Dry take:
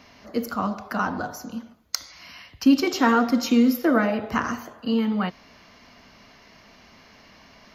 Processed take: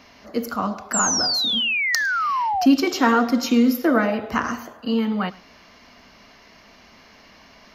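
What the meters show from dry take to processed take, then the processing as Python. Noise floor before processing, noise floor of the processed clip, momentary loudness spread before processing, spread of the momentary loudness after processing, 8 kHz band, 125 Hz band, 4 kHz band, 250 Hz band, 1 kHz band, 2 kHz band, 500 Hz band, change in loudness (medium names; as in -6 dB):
-53 dBFS, -50 dBFS, 16 LU, 10 LU, +12.0 dB, no reading, +10.5 dB, +1.0 dB, +4.5 dB, +6.5 dB, +2.0 dB, +3.0 dB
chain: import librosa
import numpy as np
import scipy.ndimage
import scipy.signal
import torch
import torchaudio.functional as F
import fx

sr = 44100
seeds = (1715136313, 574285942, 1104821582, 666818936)

y = fx.peak_eq(x, sr, hz=120.0, db=-4.5, octaves=1.2)
y = fx.spec_paint(y, sr, seeds[0], shape='fall', start_s=0.93, length_s=1.73, low_hz=690.0, high_hz=7800.0, level_db=-24.0)
y = y + 10.0 ** (-22.0 / 20.0) * np.pad(y, (int(106 * sr / 1000.0), 0))[:len(y)]
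y = y * librosa.db_to_amplitude(2.0)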